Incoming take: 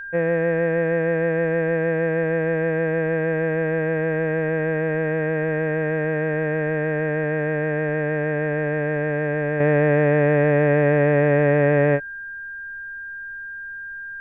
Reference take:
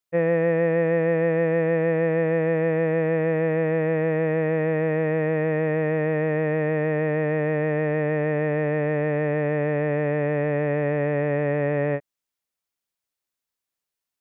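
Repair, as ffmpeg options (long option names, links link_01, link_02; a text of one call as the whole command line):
ffmpeg -i in.wav -af "bandreject=frequency=1600:width=30,agate=range=-21dB:threshold=-26dB,asetnsamples=nb_out_samples=441:pad=0,asendcmd='9.6 volume volume -6dB',volume=0dB" out.wav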